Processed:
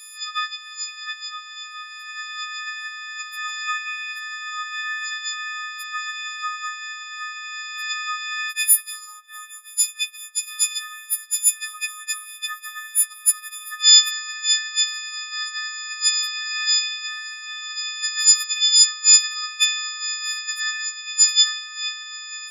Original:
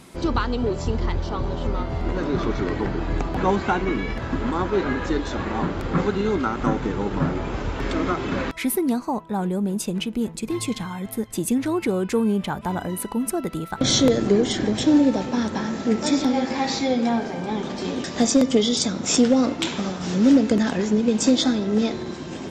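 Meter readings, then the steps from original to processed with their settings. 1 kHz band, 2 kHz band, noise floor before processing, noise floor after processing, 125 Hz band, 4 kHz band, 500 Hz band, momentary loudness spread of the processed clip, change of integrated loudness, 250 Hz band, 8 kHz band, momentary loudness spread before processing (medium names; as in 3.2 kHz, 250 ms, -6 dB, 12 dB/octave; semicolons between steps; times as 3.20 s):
-5.5 dB, +6.5 dB, -36 dBFS, -41 dBFS, under -40 dB, +10.5 dB, under -40 dB, 17 LU, +2.5 dB, under -40 dB, +12.0 dB, 9 LU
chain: partials quantised in pitch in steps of 6 st; steep high-pass 1.3 kHz 72 dB/octave; trim -1 dB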